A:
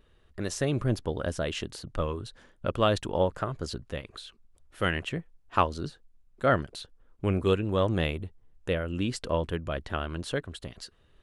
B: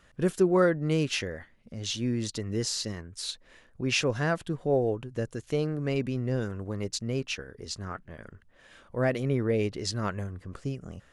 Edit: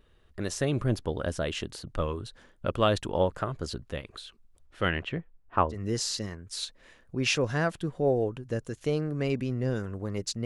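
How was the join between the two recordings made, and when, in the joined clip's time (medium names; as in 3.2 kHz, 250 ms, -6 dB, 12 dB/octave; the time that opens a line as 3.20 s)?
A
4.65–5.79 s: low-pass 7.7 kHz -> 1.1 kHz
5.74 s: go over to B from 2.40 s, crossfade 0.10 s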